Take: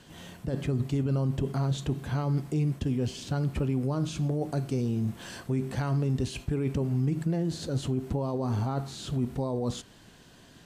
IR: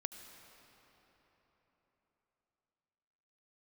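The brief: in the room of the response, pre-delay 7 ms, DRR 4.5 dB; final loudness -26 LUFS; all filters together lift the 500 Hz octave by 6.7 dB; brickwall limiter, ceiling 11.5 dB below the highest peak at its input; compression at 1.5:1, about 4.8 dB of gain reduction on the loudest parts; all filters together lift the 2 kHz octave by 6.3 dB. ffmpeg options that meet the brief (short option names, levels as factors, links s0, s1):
-filter_complex "[0:a]equalizer=f=500:t=o:g=8,equalizer=f=2000:t=o:g=8,acompressor=threshold=0.0178:ratio=1.5,alimiter=level_in=2.11:limit=0.0631:level=0:latency=1,volume=0.473,asplit=2[s0][s1];[1:a]atrim=start_sample=2205,adelay=7[s2];[s1][s2]afir=irnorm=-1:irlink=0,volume=0.75[s3];[s0][s3]amix=inputs=2:normalize=0,volume=3.35"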